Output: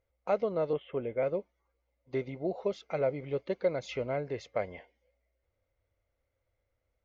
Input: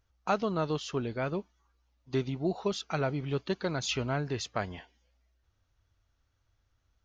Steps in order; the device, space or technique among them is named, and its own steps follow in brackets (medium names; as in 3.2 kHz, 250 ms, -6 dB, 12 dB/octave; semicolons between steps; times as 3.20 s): inside a helmet (treble shelf 4 kHz -10 dB; small resonant body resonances 530/2100 Hz, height 18 dB, ringing for 25 ms); 0.73–1.23 s: steep low-pass 3.4 kHz 96 dB/octave; trim -8.5 dB